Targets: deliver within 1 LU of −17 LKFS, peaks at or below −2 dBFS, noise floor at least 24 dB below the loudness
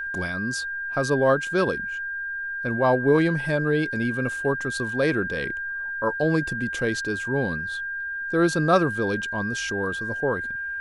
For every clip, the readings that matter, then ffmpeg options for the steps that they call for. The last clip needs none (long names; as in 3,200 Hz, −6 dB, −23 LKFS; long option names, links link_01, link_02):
interfering tone 1,600 Hz; level of the tone −28 dBFS; integrated loudness −24.5 LKFS; sample peak −6.5 dBFS; target loudness −17.0 LKFS
→ -af "bandreject=frequency=1600:width=30"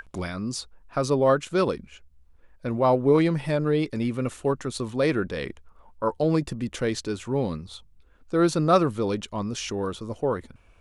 interfering tone none found; integrated loudness −25.5 LKFS; sample peak −7.0 dBFS; target loudness −17.0 LKFS
→ -af "volume=8.5dB,alimiter=limit=-2dB:level=0:latency=1"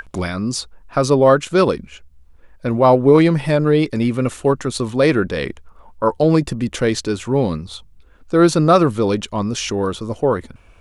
integrated loudness −17.5 LKFS; sample peak −2.0 dBFS; background noise floor −48 dBFS